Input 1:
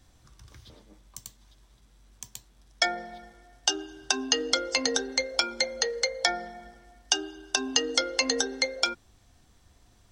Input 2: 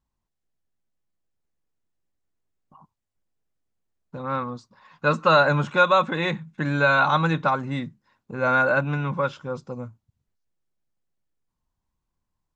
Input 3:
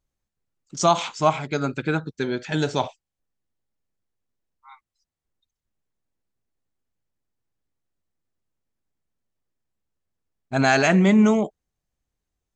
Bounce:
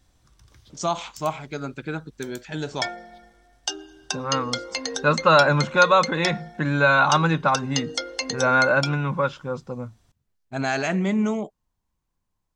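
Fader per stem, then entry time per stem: −3.0, +1.5, −6.5 decibels; 0.00, 0.00, 0.00 seconds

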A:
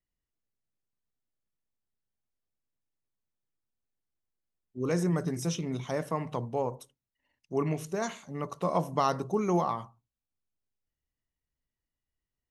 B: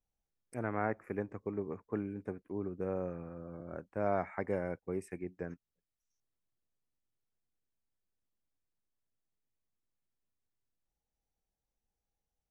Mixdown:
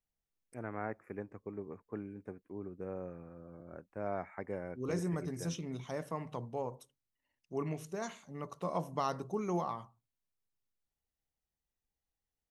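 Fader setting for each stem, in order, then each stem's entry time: −7.5, −5.5 decibels; 0.00, 0.00 seconds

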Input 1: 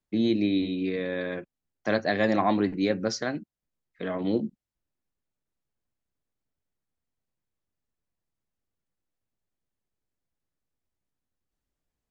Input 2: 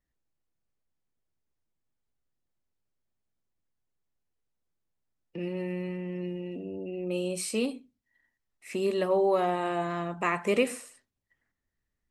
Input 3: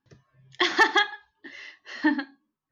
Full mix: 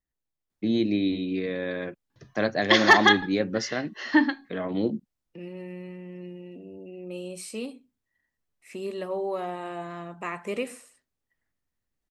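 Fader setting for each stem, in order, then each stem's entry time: 0.0, −5.5, +3.0 decibels; 0.50, 0.00, 2.10 seconds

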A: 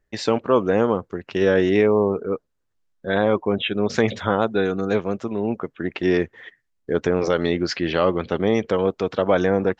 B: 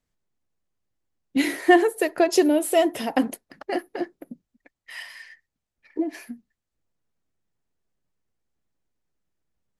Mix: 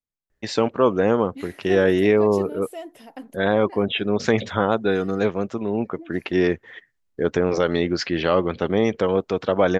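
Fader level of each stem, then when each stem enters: 0.0, −16.5 decibels; 0.30, 0.00 seconds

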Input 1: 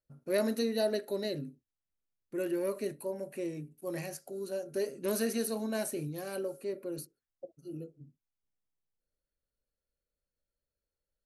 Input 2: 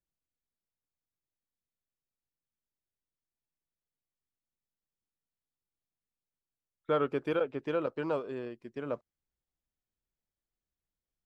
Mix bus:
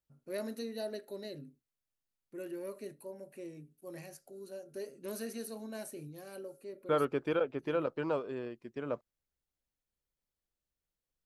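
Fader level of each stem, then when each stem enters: −9.0, −1.0 decibels; 0.00, 0.00 seconds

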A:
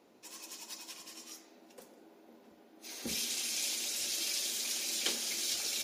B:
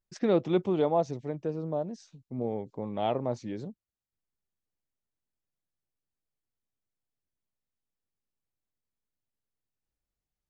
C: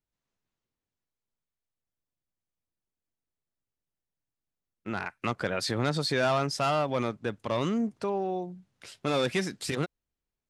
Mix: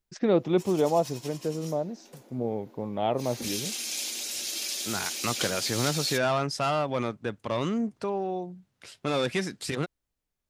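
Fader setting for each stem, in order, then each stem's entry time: +2.5, +2.0, 0.0 decibels; 0.35, 0.00, 0.00 seconds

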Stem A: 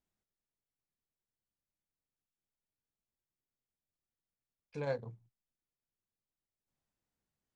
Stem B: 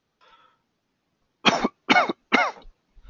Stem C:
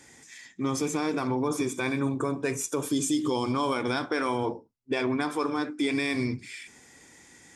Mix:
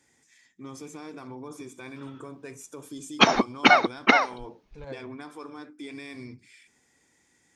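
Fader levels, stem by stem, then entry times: −5.5, +1.0, −13.0 decibels; 0.00, 1.75, 0.00 seconds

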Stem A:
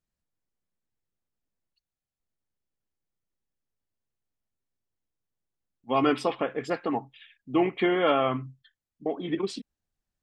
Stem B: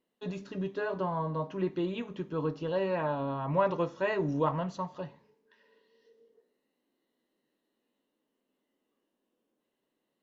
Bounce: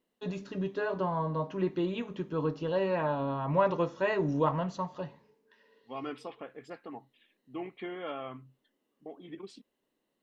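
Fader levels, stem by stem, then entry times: −15.5, +1.0 decibels; 0.00, 0.00 seconds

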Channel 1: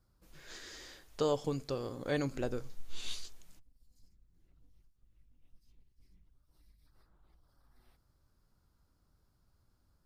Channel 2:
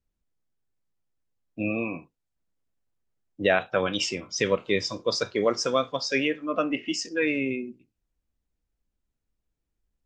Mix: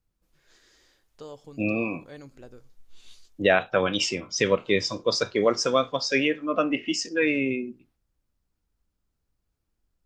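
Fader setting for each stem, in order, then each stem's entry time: −11.0, +2.0 decibels; 0.00, 0.00 seconds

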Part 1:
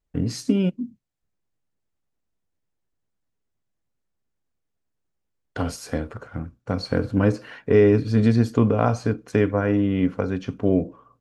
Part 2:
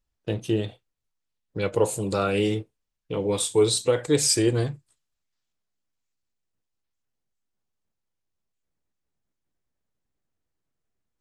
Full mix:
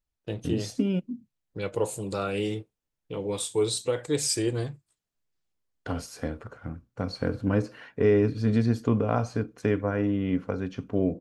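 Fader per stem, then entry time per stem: −5.5, −5.5 decibels; 0.30, 0.00 seconds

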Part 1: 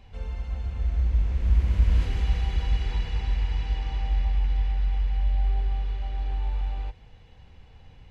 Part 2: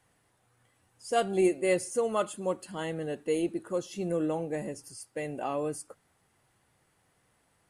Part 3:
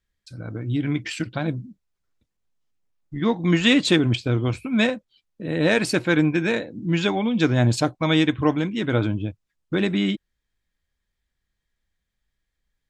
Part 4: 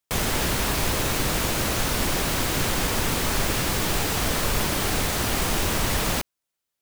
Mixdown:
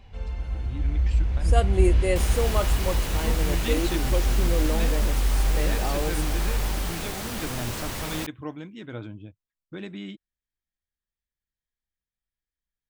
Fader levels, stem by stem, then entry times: +1.0, +1.0, −15.0, −8.5 decibels; 0.00, 0.40, 0.00, 2.05 seconds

